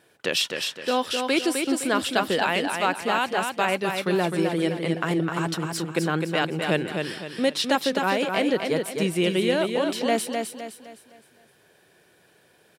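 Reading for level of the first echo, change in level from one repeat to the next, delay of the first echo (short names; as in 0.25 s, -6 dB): -5.0 dB, -8.0 dB, 0.257 s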